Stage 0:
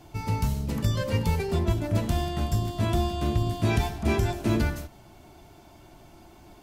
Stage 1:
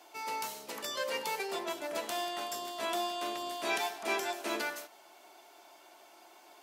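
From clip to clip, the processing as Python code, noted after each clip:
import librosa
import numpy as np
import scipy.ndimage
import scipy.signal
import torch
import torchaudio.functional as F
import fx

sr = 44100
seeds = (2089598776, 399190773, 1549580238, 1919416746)

y = scipy.signal.sosfilt(scipy.signal.bessel(4, 630.0, 'highpass', norm='mag', fs=sr, output='sos'), x)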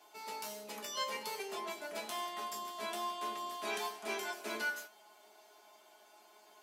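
y = fx.comb_fb(x, sr, f0_hz=210.0, decay_s=0.16, harmonics='all', damping=0.0, mix_pct=90)
y = y * librosa.db_to_amplitude(5.0)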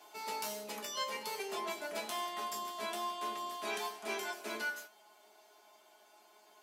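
y = fx.rider(x, sr, range_db=3, speed_s=0.5)
y = y * librosa.db_to_amplitude(1.0)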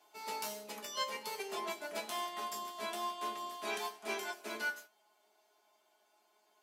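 y = fx.upward_expand(x, sr, threshold_db=-56.0, expansion=1.5)
y = y * librosa.db_to_amplitude(1.5)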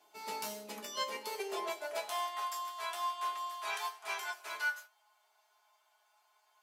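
y = fx.filter_sweep_highpass(x, sr, from_hz=110.0, to_hz=1000.0, start_s=0.21, end_s=2.49, q=1.5)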